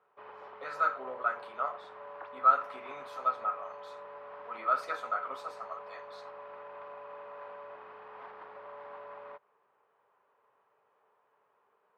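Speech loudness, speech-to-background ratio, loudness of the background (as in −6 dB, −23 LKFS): −32.0 LKFS, 15.0 dB, −47.0 LKFS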